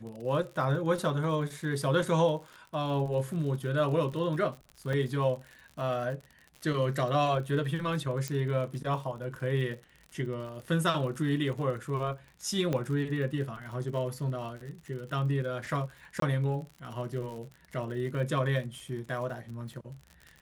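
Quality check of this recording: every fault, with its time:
surface crackle 58 per second −39 dBFS
0:04.93: drop-out 3.2 ms
0:08.28: click −18 dBFS
0:12.73: click −18 dBFS
0:16.20–0:16.22: drop-out 23 ms

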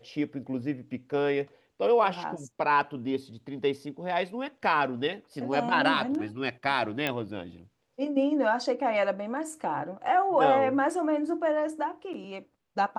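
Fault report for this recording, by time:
0:07.07: click −14 dBFS

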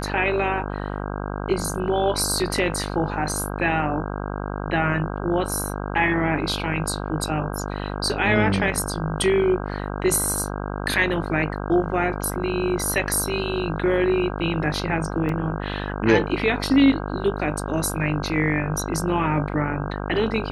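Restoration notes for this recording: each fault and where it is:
mains buzz 50 Hz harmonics 32 −29 dBFS
0:15.29: drop-out 2.1 ms

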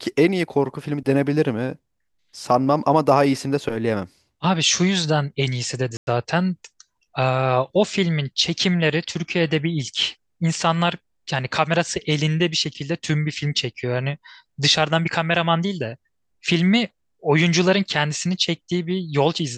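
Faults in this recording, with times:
0:05.97–0:06.07: drop-out 101 ms

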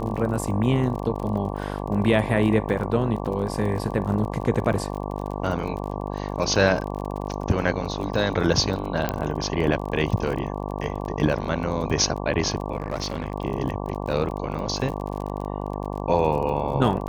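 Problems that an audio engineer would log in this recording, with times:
mains buzz 50 Hz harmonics 23 −30 dBFS
surface crackle 34 per second −31 dBFS
0:09.09: click −9 dBFS
0:12.78–0:13.34: clipping −21 dBFS

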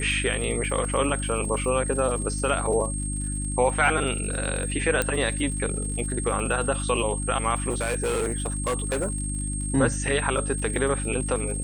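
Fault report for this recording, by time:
surface crackle 99 per second −35 dBFS
mains hum 50 Hz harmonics 6 −30 dBFS
whistle 8,500 Hz −32 dBFS
0:05.02: click −8 dBFS
0:07.69–0:09.22: clipping −21.5 dBFS

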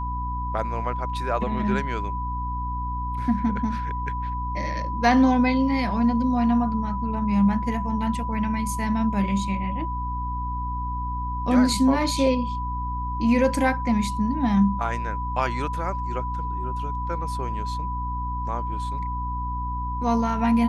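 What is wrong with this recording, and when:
mains hum 60 Hz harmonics 5 −30 dBFS
whistle 990 Hz −29 dBFS

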